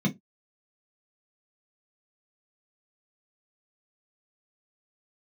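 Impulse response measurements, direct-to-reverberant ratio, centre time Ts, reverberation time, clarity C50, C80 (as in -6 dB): -0.5 dB, 12 ms, no single decay rate, 18.5 dB, 31.5 dB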